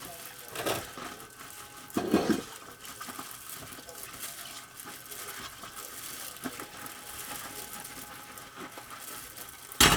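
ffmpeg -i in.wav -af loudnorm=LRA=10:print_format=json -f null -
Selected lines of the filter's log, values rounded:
"input_i" : "-33.8",
"input_tp" : "-4.7",
"input_lra" : "10.1",
"input_thresh" : "-44.0",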